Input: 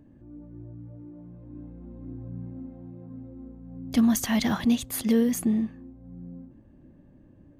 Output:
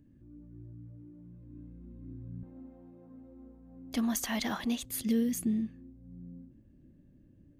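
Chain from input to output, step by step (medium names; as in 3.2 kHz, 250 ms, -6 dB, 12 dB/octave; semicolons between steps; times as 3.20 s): peaking EQ 770 Hz -14 dB 1.5 oct, from 2.43 s 120 Hz, from 4.85 s 910 Hz; trim -4.5 dB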